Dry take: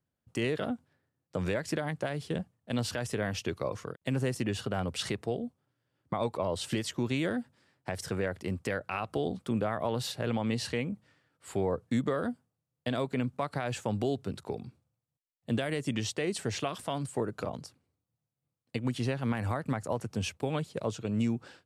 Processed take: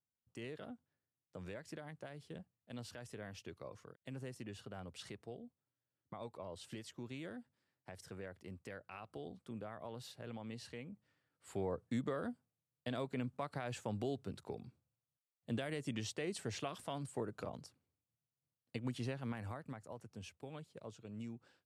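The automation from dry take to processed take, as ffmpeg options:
ffmpeg -i in.wav -af "volume=-9dB,afade=type=in:start_time=10.83:duration=0.79:silence=0.421697,afade=type=out:start_time=18.95:duration=0.87:silence=0.375837" out.wav

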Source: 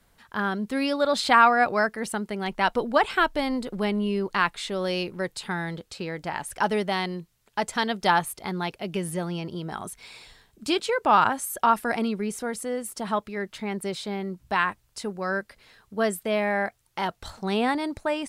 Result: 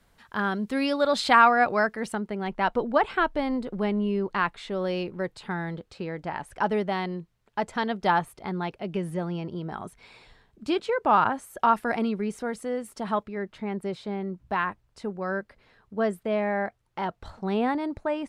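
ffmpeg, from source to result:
ffmpeg -i in.wav -af "asetnsamples=nb_out_samples=441:pad=0,asendcmd='1.42 lowpass f 3600;2.15 lowpass f 1500;11.6 lowpass f 2500;13.23 lowpass f 1200',lowpass=frequency=6700:poles=1" out.wav

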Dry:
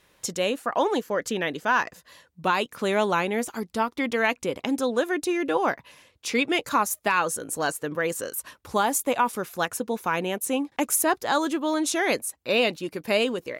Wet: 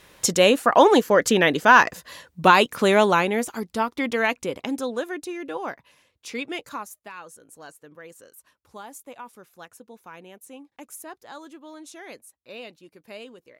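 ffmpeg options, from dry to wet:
ffmpeg -i in.wav -af "volume=9dB,afade=type=out:start_time=2.48:duration=1.01:silence=0.398107,afade=type=out:start_time=4.21:duration=1.1:silence=0.375837,afade=type=out:start_time=6.55:duration=0.45:silence=0.316228" out.wav

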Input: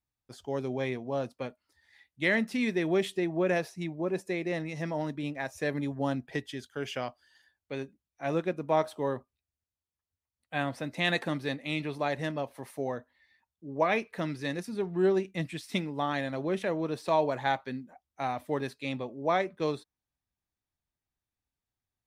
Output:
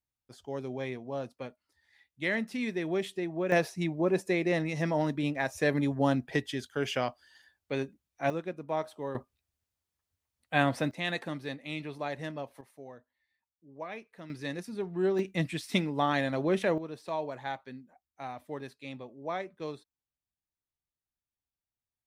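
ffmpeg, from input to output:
ffmpeg -i in.wav -af "asetnsamples=nb_out_samples=441:pad=0,asendcmd='3.52 volume volume 4dB;8.3 volume volume -6dB;9.15 volume volume 5.5dB;10.91 volume volume -5dB;12.61 volume volume -14dB;14.3 volume volume -3dB;15.19 volume volume 3dB;16.78 volume volume -8dB',volume=-4dB" out.wav

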